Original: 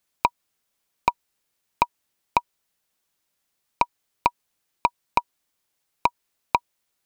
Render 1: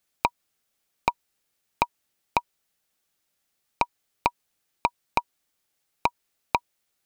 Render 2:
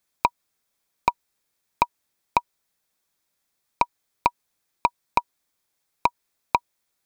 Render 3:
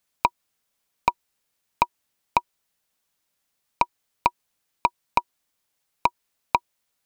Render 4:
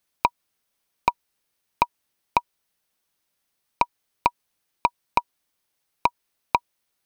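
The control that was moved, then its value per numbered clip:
notch filter, centre frequency: 1,000, 2,900, 360, 7,200 Hertz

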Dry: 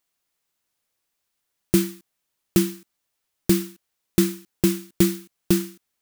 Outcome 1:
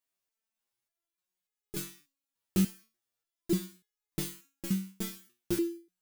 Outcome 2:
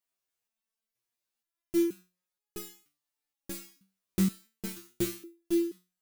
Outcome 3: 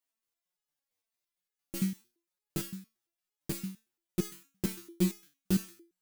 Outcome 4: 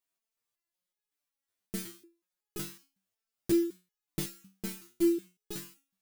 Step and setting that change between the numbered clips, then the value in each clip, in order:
step-sequenced resonator, speed: 3.4, 2.1, 8.8, 5.4 Hertz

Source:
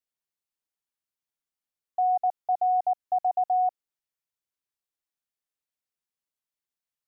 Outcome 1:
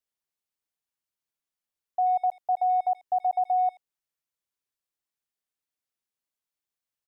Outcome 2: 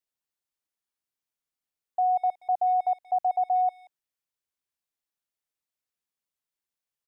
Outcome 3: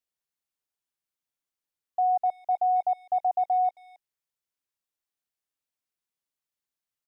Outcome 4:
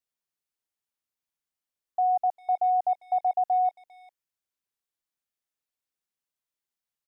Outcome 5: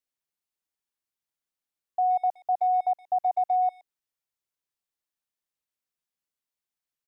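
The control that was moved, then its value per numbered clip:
far-end echo of a speakerphone, delay time: 80, 180, 270, 400, 120 milliseconds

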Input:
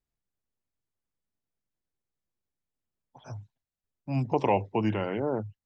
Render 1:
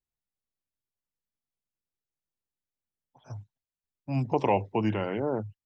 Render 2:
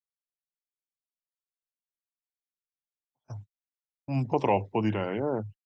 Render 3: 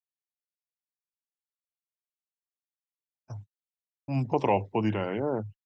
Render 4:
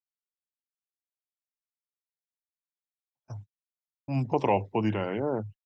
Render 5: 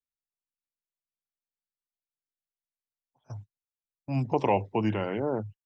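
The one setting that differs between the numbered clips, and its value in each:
noise gate, range: −7, −34, −59, −46, −20 decibels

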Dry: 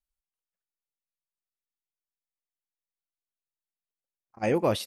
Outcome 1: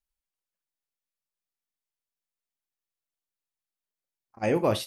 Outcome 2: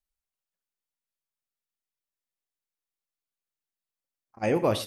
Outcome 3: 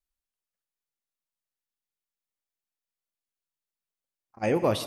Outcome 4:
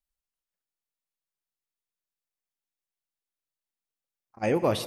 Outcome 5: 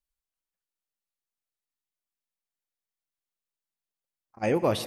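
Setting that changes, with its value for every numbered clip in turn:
reverb whose tail is shaped and stops, gate: 90, 140, 210, 350, 520 milliseconds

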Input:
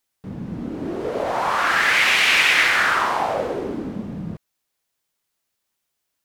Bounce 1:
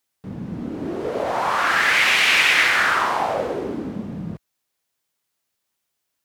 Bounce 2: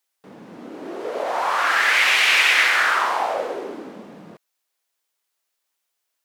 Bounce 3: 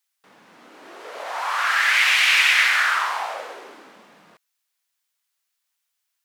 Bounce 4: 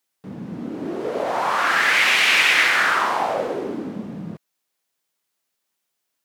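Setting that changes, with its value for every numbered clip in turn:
high-pass filter, corner frequency: 48, 430, 1,100, 160 Hertz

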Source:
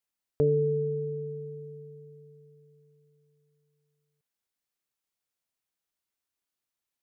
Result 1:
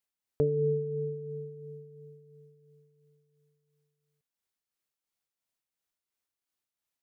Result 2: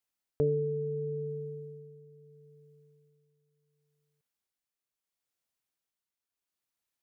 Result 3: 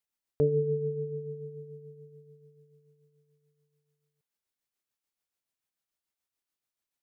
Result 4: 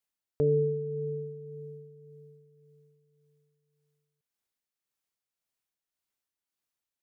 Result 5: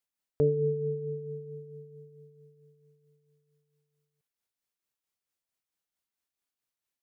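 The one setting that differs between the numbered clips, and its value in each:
amplitude tremolo, speed: 2.9, 0.73, 6.9, 1.8, 4.5 Hertz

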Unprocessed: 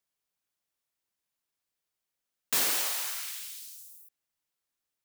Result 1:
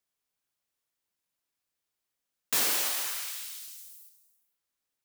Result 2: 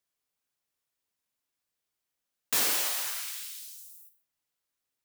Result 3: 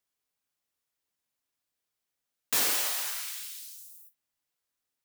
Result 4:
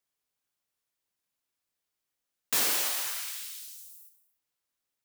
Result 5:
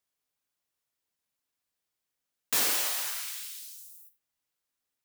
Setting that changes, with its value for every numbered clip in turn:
reverb whose tail is shaped and stops, gate: 520, 190, 80, 340, 120 milliseconds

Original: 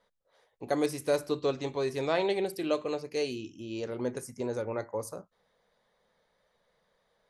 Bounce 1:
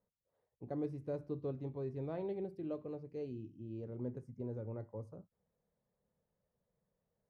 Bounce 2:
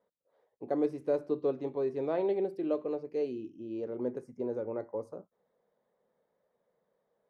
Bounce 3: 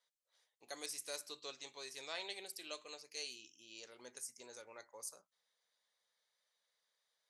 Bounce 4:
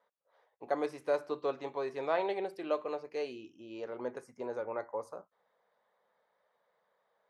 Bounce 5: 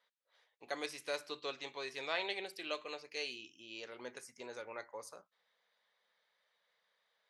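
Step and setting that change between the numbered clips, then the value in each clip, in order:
resonant band-pass, frequency: 100, 350, 7,100, 940, 2,800 Hertz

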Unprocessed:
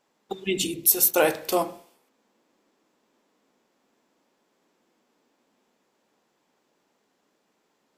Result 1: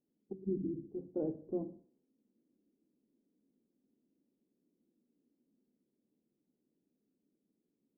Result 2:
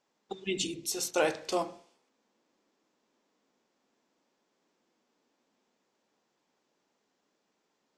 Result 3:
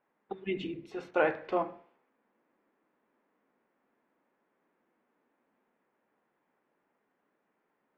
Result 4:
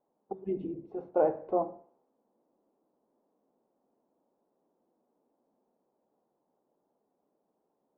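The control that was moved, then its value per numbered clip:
transistor ladder low-pass, frequency: 360, 7,900, 2,400, 950 Hertz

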